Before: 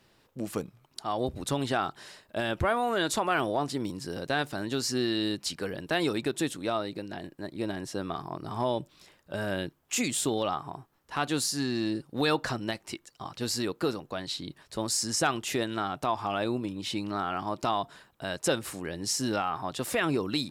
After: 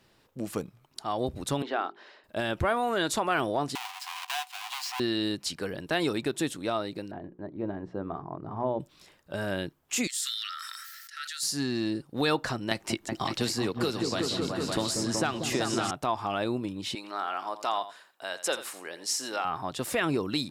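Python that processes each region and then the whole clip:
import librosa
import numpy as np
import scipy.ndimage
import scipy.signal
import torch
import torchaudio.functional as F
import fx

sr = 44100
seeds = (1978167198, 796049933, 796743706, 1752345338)

y = fx.chain(x, sr, fx.highpass(hz=290.0, slope=24),
    fx.air_absorb(metres=260.0),
    fx.hum_notches(base_hz=50, count=8), at=(1.62, 2.24))
y = fx.chain(y, sr, fx.halfwave_hold(),
    fx.cheby_ripple_highpass(hz=720.0, ripple_db=9),
    fx.band_squash(depth_pct=70), at=(3.75, 5.0))
y = fx.chain(y, sr, fx.lowpass(hz=1100.0, slope=12),
    fx.hum_notches(base_hz=60, count=8), at=(7.11, 8.8))
y = fx.chain(y, sr, fx.cheby_ripple_highpass(hz=1300.0, ripple_db=9),
    fx.high_shelf(hz=9600.0, db=9.5),
    fx.sustainer(db_per_s=20.0), at=(10.07, 11.43))
y = fx.chain(y, sr, fx.high_shelf(hz=11000.0, db=-3.5),
    fx.echo_opening(ms=187, hz=400, octaves=2, feedback_pct=70, wet_db=-3),
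    fx.band_squash(depth_pct=100), at=(12.71, 15.91))
y = fx.chain(y, sr, fx.highpass(hz=550.0, slope=12),
    fx.echo_single(ms=85, db=-13.5), at=(16.95, 19.45))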